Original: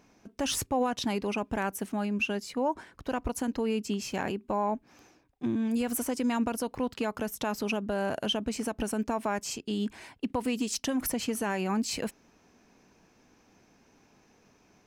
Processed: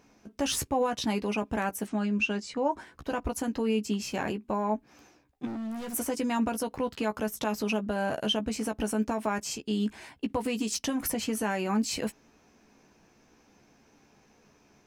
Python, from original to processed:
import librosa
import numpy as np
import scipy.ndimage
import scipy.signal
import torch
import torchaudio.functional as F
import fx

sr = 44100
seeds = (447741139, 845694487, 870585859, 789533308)

y = fx.steep_lowpass(x, sr, hz=8600.0, slope=36, at=(1.87, 2.73))
y = fx.clip_hard(y, sr, threshold_db=-35.5, at=(5.45, 5.93), fade=0.02)
y = fx.doubler(y, sr, ms=14.0, db=-7)